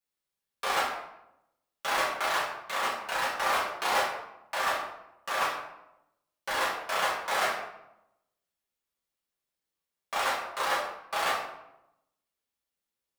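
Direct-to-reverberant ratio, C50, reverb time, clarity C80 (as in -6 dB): -8.0 dB, 3.5 dB, 0.85 s, 7.0 dB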